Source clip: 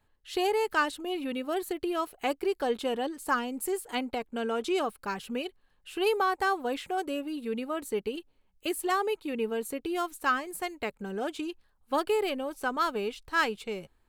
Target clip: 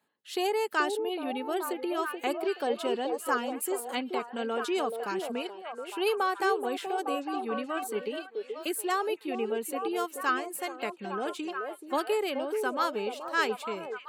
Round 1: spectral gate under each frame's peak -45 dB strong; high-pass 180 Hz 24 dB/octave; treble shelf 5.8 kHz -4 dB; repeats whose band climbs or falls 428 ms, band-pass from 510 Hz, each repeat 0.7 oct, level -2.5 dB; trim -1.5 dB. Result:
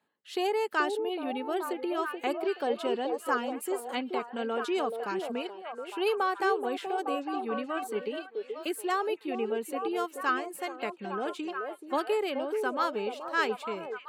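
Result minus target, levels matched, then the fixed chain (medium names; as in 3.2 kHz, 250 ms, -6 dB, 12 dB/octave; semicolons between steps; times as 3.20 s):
8 kHz band -6.0 dB
spectral gate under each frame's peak -45 dB strong; high-pass 180 Hz 24 dB/octave; treble shelf 5.8 kHz +4.5 dB; repeats whose band climbs or falls 428 ms, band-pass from 510 Hz, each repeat 0.7 oct, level -2.5 dB; trim -1.5 dB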